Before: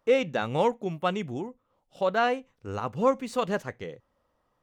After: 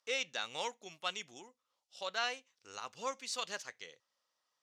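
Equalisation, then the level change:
resonant band-pass 5,400 Hz, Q 1.7
+7.0 dB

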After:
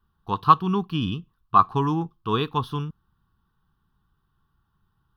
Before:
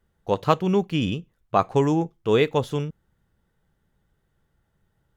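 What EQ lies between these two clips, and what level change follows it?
parametric band 1,100 Hz +12 dB 0.31 octaves
phaser with its sweep stopped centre 2,100 Hz, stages 6
0.0 dB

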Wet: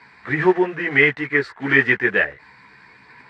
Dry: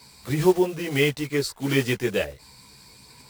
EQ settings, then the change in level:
high-pass filter 290 Hz 6 dB per octave
low-pass with resonance 1,800 Hz, resonance Q 5.1
parametric band 550 Hz −5.5 dB 0.34 octaves
+4.5 dB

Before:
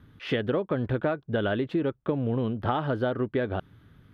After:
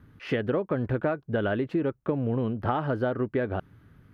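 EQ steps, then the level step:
parametric band 3,500 Hz −9.5 dB 0.39 octaves
0.0 dB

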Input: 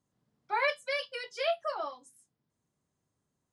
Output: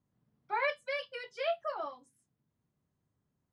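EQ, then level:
bass and treble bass +6 dB, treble −10 dB
−2.5 dB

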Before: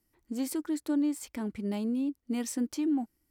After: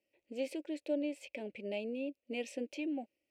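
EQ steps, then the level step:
pair of resonant band-passes 1,200 Hz, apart 2.2 octaves
+10.0 dB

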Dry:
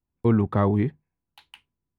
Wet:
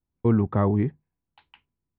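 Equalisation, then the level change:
high-frequency loss of the air 400 metres
0.0 dB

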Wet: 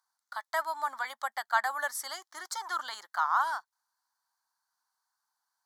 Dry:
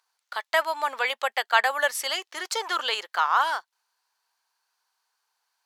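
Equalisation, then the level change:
phaser with its sweep stopped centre 1,100 Hz, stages 4
−4.5 dB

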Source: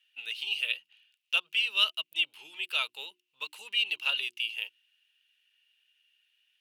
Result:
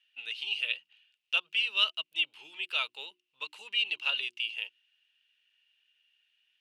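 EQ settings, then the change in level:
high-frequency loss of the air 62 metres
0.0 dB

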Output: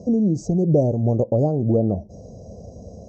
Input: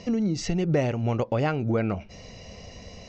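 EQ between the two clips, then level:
high-pass filter 61 Hz
Chebyshev band-stop filter 640–6,600 Hz, order 3
high-shelf EQ 3,300 Hz −10 dB
+7.0 dB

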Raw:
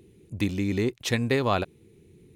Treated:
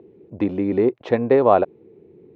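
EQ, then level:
resonant band-pass 490 Hz, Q 0.69
high-frequency loss of the air 150 metres
parametric band 650 Hz +8.5 dB 1.9 octaves
+5.5 dB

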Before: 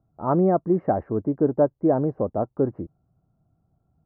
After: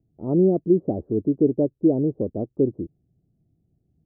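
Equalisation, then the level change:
transistor ladder low-pass 480 Hz, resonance 35%
+7.0 dB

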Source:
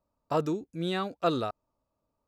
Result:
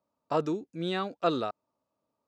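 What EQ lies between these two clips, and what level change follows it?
band-pass filter 160–6,700 Hz
0.0 dB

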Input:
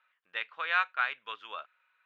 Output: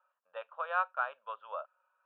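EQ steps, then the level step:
loudspeaker in its box 320–2,600 Hz, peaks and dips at 410 Hz +4 dB, 630 Hz +5 dB, 920 Hz +4 dB, 1,300 Hz +4 dB
parametric band 550 Hz +14 dB 0.4 octaves
phaser with its sweep stopped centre 860 Hz, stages 4
−2.5 dB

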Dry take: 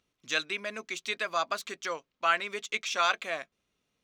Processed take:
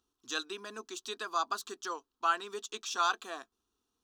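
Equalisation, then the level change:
phaser with its sweep stopped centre 580 Hz, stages 6
0.0 dB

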